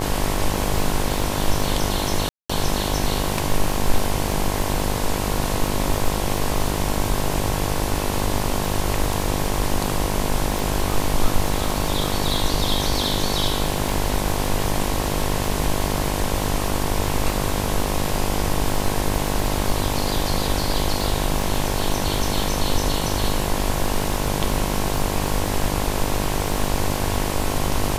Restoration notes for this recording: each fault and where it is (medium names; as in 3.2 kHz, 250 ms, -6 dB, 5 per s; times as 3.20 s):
buzz 50 Hz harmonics 22 -26 dBFS
crackle 32 per s -25 dBFS
2.29–2.50 s: dropout 205 ms
10.59 s: pop